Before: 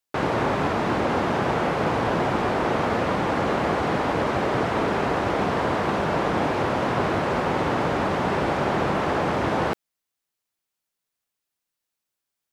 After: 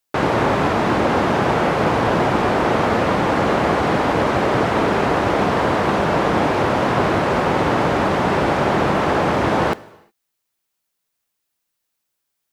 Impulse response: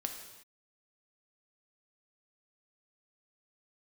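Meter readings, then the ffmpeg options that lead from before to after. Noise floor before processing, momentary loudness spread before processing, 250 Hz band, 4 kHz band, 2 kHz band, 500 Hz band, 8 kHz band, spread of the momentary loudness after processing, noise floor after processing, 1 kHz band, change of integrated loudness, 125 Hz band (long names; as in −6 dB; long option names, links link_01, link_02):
−84 dBFS, 1 LU, +6.0 dB, +6.0 dB, +5.5 dB, +5.5 dB, +6.0 dB, 1 LU, −77 dBFS, +5.5 dB, +5.5 dB, +5.5 dB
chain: -filter_complex "[0:a]asplit=2[link_01][link_02];[1:a]atrim=start_sample=2205,highshelf=frequency=9500:gain=11.5[link_03];[link_02][link_03]afir=irnorm=-1:irlink=0,volume=-12.5dB[link_04];[link_01][link_04]amix=inputs=2:normalize=0,volume=4dB"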